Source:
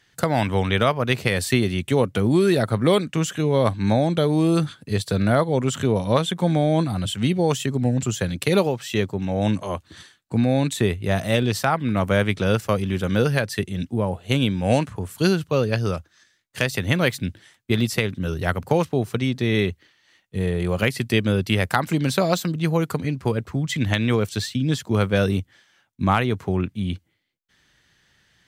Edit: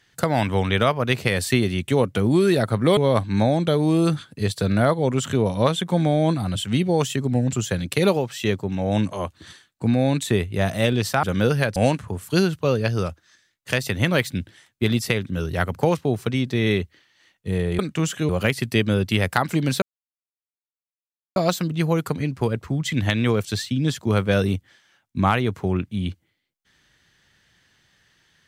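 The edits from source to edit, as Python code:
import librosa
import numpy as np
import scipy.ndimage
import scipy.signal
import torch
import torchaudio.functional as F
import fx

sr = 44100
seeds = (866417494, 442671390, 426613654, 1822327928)

y = fx.edit(x, sr, fx.move(start_s=2.97, length_s=0.5, to_s=20.67),
    fx.cut(start_s=11.73, length_s=1.25),
    fx.cut(start_s=13.51, length_s=1.13),
    fx.insert_silence(at_s=22.2, length_s=1.54), tone=tone)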